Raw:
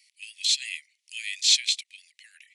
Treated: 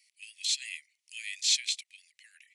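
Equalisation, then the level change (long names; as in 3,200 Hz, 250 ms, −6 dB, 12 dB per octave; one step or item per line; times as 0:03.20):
parametric band 3,600 Hz −4 dB 1 octave
−3.5 dB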